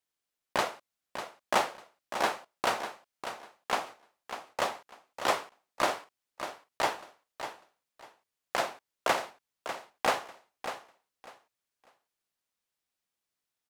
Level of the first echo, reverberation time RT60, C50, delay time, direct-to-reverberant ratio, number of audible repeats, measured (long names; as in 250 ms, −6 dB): −10.0 dB, no reverb audible, no reverb audible, 597 ms, no reverb audible, 2